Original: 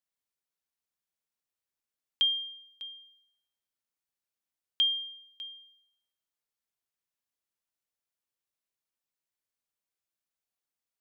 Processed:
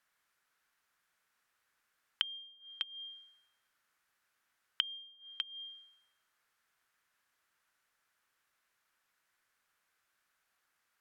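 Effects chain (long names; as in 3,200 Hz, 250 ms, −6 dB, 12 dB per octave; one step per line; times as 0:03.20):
brickwall limiter −28.5 dBFS, peak gain reduction 10 dB
parametric band 1,500 Hz +15 dB 1.4 octaves
treble cut that deepens with the level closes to 770 Hz, closed at −34 dBFS
level +7.5 dB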